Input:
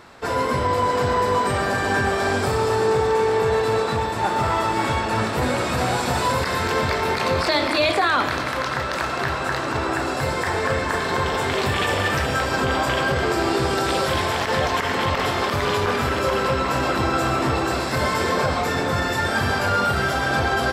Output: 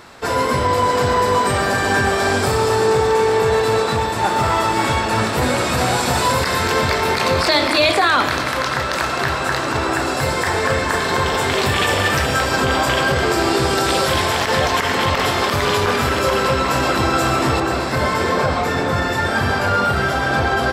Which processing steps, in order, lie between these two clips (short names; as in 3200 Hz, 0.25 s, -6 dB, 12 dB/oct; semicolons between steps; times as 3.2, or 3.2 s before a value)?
high shelf 3600 Hz +5 dB, from 17.6 s -4 dB; gain +3.5 dB